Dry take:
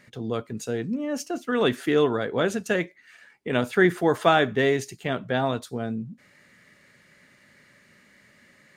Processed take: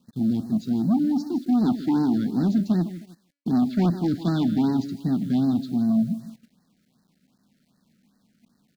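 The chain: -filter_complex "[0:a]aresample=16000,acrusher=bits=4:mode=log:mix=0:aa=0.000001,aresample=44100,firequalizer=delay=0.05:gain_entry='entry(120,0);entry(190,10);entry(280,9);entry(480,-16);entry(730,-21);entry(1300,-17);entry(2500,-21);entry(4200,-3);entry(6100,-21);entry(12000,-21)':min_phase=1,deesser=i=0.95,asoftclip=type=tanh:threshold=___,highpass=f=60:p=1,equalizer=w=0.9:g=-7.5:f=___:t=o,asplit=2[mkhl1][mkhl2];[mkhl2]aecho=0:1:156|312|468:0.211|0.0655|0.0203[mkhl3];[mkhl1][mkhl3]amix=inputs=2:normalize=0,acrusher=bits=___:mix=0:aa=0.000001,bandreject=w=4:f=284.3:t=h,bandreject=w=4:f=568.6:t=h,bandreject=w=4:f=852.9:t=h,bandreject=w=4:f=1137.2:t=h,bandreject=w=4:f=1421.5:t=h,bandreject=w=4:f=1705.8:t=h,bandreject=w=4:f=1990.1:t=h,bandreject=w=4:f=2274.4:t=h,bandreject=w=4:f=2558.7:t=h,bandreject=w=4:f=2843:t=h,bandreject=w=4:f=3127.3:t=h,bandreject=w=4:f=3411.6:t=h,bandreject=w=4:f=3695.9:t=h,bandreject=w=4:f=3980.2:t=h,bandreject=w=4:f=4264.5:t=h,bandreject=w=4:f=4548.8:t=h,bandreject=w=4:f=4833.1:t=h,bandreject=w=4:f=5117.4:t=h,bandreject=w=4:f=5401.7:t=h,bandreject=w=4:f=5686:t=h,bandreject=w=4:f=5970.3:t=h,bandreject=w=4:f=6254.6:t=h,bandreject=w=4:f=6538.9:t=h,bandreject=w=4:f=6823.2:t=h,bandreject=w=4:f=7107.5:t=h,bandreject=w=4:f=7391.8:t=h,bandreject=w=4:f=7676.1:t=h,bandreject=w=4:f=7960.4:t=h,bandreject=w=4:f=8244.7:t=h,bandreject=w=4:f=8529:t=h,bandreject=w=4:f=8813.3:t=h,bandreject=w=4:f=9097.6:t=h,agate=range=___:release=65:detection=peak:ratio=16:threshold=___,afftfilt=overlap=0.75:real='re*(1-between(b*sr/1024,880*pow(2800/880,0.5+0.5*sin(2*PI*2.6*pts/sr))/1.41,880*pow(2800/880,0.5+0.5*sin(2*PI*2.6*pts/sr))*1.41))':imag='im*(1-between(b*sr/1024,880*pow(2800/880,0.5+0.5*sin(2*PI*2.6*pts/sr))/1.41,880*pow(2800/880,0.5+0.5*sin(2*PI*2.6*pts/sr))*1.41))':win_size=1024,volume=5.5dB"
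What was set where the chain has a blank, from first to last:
-20.5dB, 480, 9, -14dB, -52dB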